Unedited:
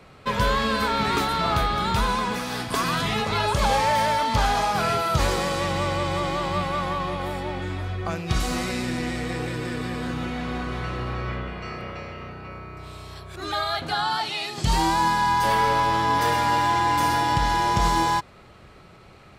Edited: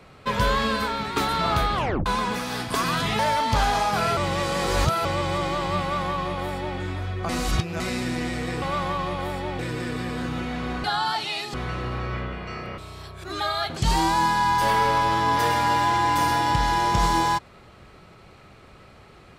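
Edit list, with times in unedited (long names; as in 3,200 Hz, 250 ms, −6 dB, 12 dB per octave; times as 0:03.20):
0:00.66–0:01.16: fade out, to −9 dB
0:01.74: tape stop 0.32 s
0:03.19–0:04.01: remove
0:04.99–0:05.87: reverse
0:06.63–0:07.60: duplicate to 0:09.44
0:08.11–0:08.62: reverse
0:11.93–0:12.90: remove
0:13.89–0:14.59: move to 0:10.69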